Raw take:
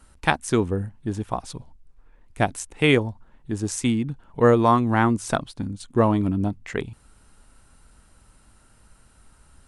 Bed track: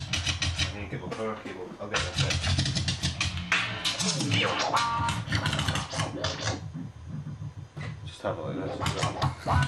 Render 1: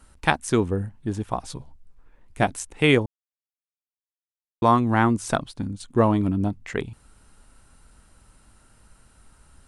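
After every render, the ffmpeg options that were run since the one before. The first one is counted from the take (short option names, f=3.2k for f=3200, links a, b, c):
-filter_complex "[0:a]asettb=1/sr,asplit=3[a][b][c];[a]atrim=end=1.404[d];[b]atrim=start=1.4:end=2.48,asetpts=PTS-STARTPTS,afade=t=in:d=0.004:c=qsin,afade=t=out:st=1.076:d=0.004:c=qsin,asplit=2[e][f];[f]adelay=14,volume=-9dB[g];[e][g]amix=inputs=2:normalize=0,atrim=end_sample=47628[h];[c]atrim=start=2.476[i];[d][h]acrossfade=d=0.004:c1=hsin:c2=qsin[j];[j][i]acrossfade=d=0.004:c1=qsin:c2=hsin,asplit=3[k][l][m];[k]atrim=end=3.06,asetpts=PTS-STARTPTS,afade=t=out:st=3.056:d=0.004:c=hsin[n];[l]atrim=start=3.06:end=4.62,asetpts=PTS-STARTPTS,volume=0[o];[m]atrim=start=4.62,asetpts=PTS-STARTPTS,afade=t=in:d=0.004:c=hsin[p];[n][o][p]concat=n=3:v=0:a=1"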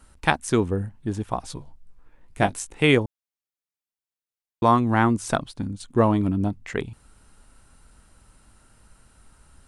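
-filter_complex "[0:a]asettb=1/sr,asplit=3[a][b][c];[a]atrim=end=1.554[d];[b]atrim=start=1.55:end=2.84,asetpts=PTS-STARTPTS,afade=t=in:d=0.004:c=qsin,afade=t=out:st=1.286:d=0.004:c=qsin,asplit=2[e][f];[f]adelay=20,volume=-8dB[g];[e][g]amix=inputs=2:normalize=0,atrim=end_sample=56889[h];[c]atrim=start=2.836[i];[d][h]acrossfade=d=0.004:c1=hsin:c2=qsin[j];[j][i]acrossfade=d=0.004:c1=qsin:c2=hsin"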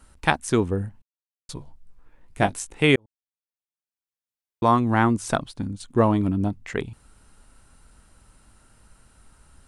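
-filter_complex "[0:a]asplit=4[a][b][c][d];[a]atrim=end=1.02,asetpts=PTS-STARTPTS,afade=t=out:st=1.016:d=0.004:c=hsin[e];[b]atrim=start=1.02:end=1.49,asetpts=PTS-STARTPTS,volume=0[f];[c]atrim=start=1.49:end=2.96,asetpts=PTS-STARTPTS,afade=t=in:d=0.004:c=hsin,afade=t=out:st=1.466:d=0.004:c=hsin[g];[d]atrim=start=2.96,asetpts=PTS-STARTPTS,afade=t=in:d=1.9[h];[e][f][g][h]concat=n=4:v=0:a=1"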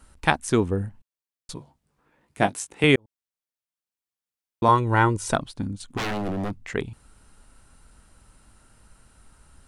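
-filter_complex "[0:a]asettb=1/sr,asplit=3[a][b][c];[a]atrim=end=1.544[d];[b]atrim=start=1.54:end=2.84,asetpts=PTS-STARTPTS,afade=t=in:d=0.004:c=qsin,afade=t=out:st=1.296:d=0.004:c=qsin,highpass=130[e];[c]atrim=start=2.836[f];[d][e]acrossfade=d=0.004:c1=hsin:c2=qsin[g];[g][f]acrossfade=d=0.004:c1=qsin:c2=hsin,asettb=1/sr,asplit=3[h][i][j];[h]atrim=end=4.684[k];[i]atrim=start=4.68:end=5.33,asetpts=PTS-STARTPTS,afade=t=in:d=0.004:c=qsin,afade=t=out:st=0.646:d=0.004:c=qsin,aecho=1:1:2.1:0.69,atrim=end_sample=28665[l];[j]atrim=start=5.326[m];[k][l]acrossfade=d=0.004:c1=hsin:c2=qsin[n];[n][m]acrossfade=d=0.004:c1=qsin:c2=hsin,asplit=3[o][p][q];[o]afade=t=out:st=5.96:d=0.02[r];[p]aeval=exprs='0.075*(abs(mod(val(0)/0.075+3,4)-2)-1)':c=same,afade=t=in:st=5.96:d=0.02,afade=t=out:st=6.6:d=0.02[s];[q]afade=t=in:st=6.6:d=0.02[t];[r][s][t]amix=inputs=3:normalize=0"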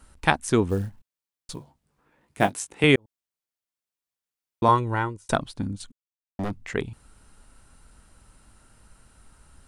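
-filter_complex "[0:a]asettb=1/sr,asplit=3[a][b][c];[a]atrim=end=0.694[d];[b]atrim=start=0.69:end=2.51,asetpts=PTS-STARTPTS,afade=t=in:d=0.004:c=qsin,afade=t=out:st=1.816:d=0.004:c=qsin,acrusher=bits=7:mode=log:mix=0:aa=0.000001[e];[c]atrim=start=2.506[f];[d][e]acrossfade=d=0.004:c1=hsin:c2=qsin[g];[g][f]acrossfade=d=0.004:c1=qsin:c2=hsin,asplit=4[h][i][j][k];[h]atrim=end=5.29,asetpts=PTS-STARTPTS,afade=t=out:st=4.65:d=0.64[l];[i]atrim=start=5.29:end=5.92,asetpts=PTS-STARTPTS,afade=t=in:d=0.004:c=hsin,afade=t=out:st=0.626:d=0.004:c=hsin[m];[j]atrim=start=5.92:end=6.39,asetpts=PTS-STARTPTS,volume=0[n];[k]atrim=start=6.39,asetpts=PTS-STARTPTS,afade=t=in:d=0.004:c=hsin[o];[l][m][n][o]concat=n=4:v=0:a=1"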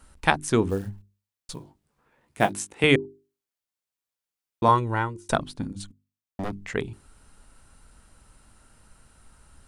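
-af "bandreject=f=50:t=h:w=6,bandreject=f=100:t=h:w=6,bandreject=f=150:t=h:w=6,bandreject=f=200:t=h:w=6,bandreject=f=250:t=h:w=6,bandreject=f=300:t=h:w=6,bandreject=f=350:t=h:w=6,bandreject=f=400:t=h:w=6"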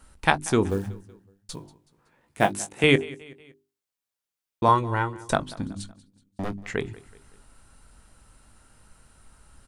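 -filter_complex "[0:a]asplit=2[a][b];[b]adelay=20,volume=-13dB[c];[a][c]amix=inputs=2:normalize=0,aecho=1:1:187|374|561:0.0944|0.0434|0.02"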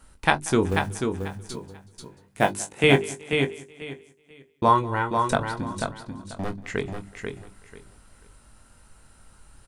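-filter_complex "[0:a]asplit=2[a][b];[b]adelay=22,volume=-10dB[c];[a][c]amix=inputs=2:normalize=0,asplit=2[d][e];[e]aecho=0:1:489|978|1467:0.531|0.111|0.0234[f];[d][f]amix=inputs=2:normalize=0"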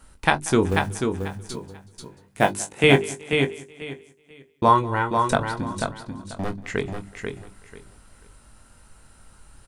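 -af "volume=2dB,alimiter=limit=-2dB:level=0:latency=1"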